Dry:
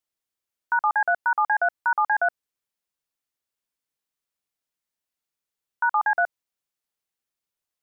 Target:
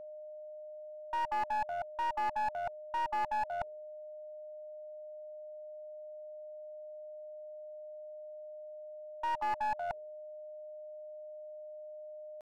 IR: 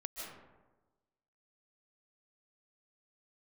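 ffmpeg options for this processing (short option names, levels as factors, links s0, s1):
-af "bandreject=f=77.45:t=h:w=4,bandreject=f=154.9:t=h:w=4,bandreject=f=232.35:t=h:w=4,bandreject=f=309.8:t=h:w=4,bandreject=f=387.25:t=h:w=4,bandreject=f=464.7:t=h:w=4,areverse,acompressor=threshold=0.0251:ratio=12,areverse,lowpass=f=900:t=q:w=5.5,aeval=exprs='val(0)+0.0141*sin(2*PI*610*n/s)':c=same,atempo=0.63,aeval=exprs='clip(val(0),-1,0.0473)':c=same,volume=0.447"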